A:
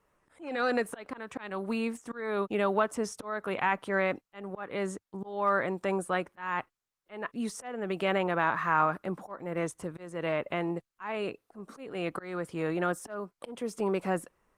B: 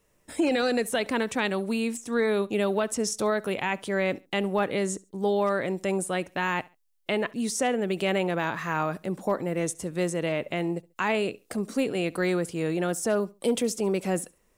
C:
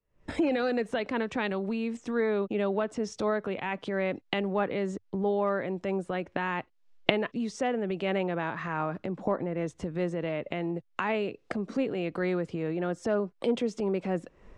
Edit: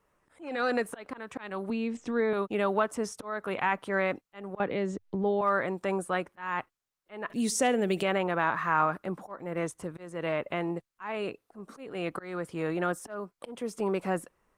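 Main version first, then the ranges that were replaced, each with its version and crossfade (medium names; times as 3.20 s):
A
1.70–2.33 s: from C
4.60–5.41 s: from C
7.30–8.03 s: from B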